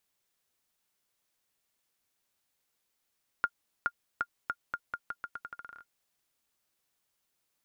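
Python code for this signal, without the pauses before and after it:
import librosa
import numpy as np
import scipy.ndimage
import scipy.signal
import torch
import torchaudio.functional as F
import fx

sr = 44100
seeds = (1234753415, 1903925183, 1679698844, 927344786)

y = fx.bouncing_ball(sr, first_gap_s=0.42, ratio=0.83, hz=1410.0, decay_ms=56.0, level_db=-15.5)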